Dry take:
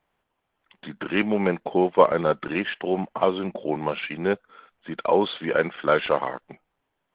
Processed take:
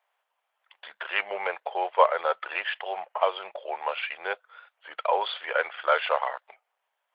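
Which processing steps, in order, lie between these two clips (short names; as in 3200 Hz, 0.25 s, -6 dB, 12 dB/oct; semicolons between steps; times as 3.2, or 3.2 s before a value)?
inverse Chebyshev high-pass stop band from 290 Hz, stop band 40 dB; record warp 33 1/3 rpm, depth 100 cents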